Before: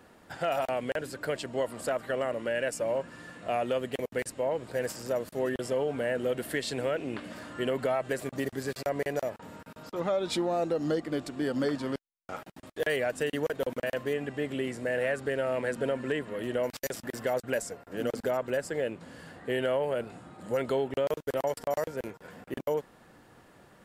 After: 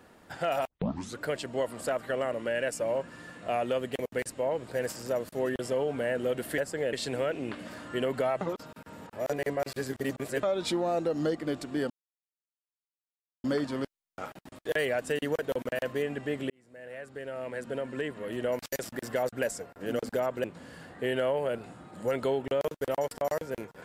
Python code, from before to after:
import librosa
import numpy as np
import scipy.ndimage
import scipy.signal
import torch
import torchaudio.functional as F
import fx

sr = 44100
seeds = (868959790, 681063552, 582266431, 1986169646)

y = fx.edit(x, sr, fx.tape_start(start_s=0.68, length_s=0.51),
    fx.reverse_span(start_s=8.06, length_s=2.02),
    fx.insert_silence(at_s=11.55, length_s=1.54),
    fx.fade_in_span(start_s=14.61, length_s=2.1),
    fx.move(start_s=18.55, length_s=0.35, to_s=6.58), tone=tone)